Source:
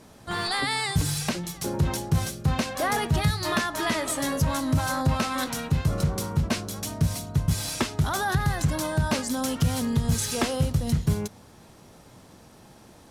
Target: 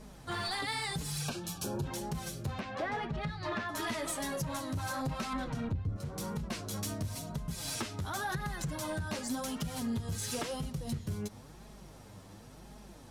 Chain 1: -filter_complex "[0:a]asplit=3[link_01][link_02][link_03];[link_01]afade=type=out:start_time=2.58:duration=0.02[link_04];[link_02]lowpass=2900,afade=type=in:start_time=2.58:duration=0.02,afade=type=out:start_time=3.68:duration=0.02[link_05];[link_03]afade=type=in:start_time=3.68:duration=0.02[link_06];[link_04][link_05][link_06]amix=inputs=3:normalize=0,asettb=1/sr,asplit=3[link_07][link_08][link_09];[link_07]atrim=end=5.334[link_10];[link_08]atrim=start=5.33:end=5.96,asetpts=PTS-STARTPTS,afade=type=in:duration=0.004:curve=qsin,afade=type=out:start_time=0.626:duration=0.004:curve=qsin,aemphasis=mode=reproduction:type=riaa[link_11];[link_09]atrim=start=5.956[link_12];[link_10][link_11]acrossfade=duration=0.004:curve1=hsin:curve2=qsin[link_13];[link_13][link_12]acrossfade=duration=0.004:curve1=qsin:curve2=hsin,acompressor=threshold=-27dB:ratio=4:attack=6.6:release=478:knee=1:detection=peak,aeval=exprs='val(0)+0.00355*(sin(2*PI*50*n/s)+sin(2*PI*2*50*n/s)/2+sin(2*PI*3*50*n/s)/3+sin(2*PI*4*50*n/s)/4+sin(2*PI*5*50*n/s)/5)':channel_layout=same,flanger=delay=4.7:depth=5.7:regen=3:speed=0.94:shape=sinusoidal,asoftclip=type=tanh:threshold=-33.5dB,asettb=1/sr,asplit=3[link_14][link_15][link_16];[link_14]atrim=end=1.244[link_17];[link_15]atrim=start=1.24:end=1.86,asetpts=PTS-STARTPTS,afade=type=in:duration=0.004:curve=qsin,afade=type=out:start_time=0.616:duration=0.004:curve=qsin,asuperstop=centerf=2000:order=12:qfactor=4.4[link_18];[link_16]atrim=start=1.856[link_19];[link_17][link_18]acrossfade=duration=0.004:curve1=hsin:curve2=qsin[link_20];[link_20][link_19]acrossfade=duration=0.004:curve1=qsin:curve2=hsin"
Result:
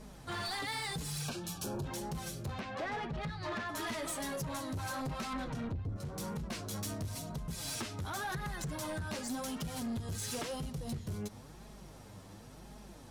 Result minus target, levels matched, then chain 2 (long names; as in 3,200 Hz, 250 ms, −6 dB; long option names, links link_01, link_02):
soft clipping: distortion +7 dB
-filter_complex "[0:a]asplit=3[link_01][link_02][link_03];[link_01]afade=type=out:start_time=2.58:duration=0.02[link_04];[link_02]lowpass=2900,afade=type=in:start_time=2.58:duration=0.02,afade=type=out:start_time=3.68:duration=0.02[link_05];[link_03]afade=type=in:start_time=3.68:duration=0.02[link_06];[link_04][link_05][link_06]amix=inputs=3:normalize=0,asettb=1/sr,asplit=3[link_07][link_08][link_09];[link_07]atrim=end=5.334[link_10];[link_08]atrim=start=5.33:end=5.96,asetpts=PTS-STARTPTS,afade=type=in:duration=0.004:curve=qsin,afade=type=out:start_time=0.626:duration=0.004:curve=qsin,aemphasis=mode=reproduction:type=riaa[link_11];[link_09]atrim=start=5.956[link_12];[link_10][link_11]acrossfade=duration=0.004:curve1=hsin:curve2=qsin[link_13];[link_13][link_12]acrossfade=duration=0.004:curve1=qsin:curve2=hsin,acompressor=threshold=-27dB:ratio=4:attack=6.6:release=478:knee=1:detection=peak,aeval=exprs='val(0)+0.00355*(sin(2*PI*50*n/s)+sin(2*PI*2*50*n/s)/2+sin(2*PI*3*50*n/s)/3+sin(2*PI*4*50*n/s)/4+sin(2*PI*5*50*n/s)/5)':channel_layout=same,flanger=delay=4.7:depth=5.7:regen=3:speed=0.94:shape=sinusoidal,asoftclip=type=tanh:threshold=-27dB,asettb=1/sr,asplit=3[link_14][link_15][link_16];[link_14]atrim=end=1.244[link_17];[link_15]atrim=start=1.24:end=1.86,asetpts=PTS-STARTPTS,afade=type=in:duration=0.004:curve=qsin,afade=type=out:start_time=0.616:duration=0.004:curve=qsin,asuperstop=centerf=2000:order=12:qfactor=4.4[link_18];[link_16]atrim=start=1.856[link_19];[link_17][link_18]acrossfade=duration=0.004:curve1=hsin:curve2=qsin[link_20];[link_20][link_19]acrossfade=duration=0.004:curve1=qsin:curve2=hsin"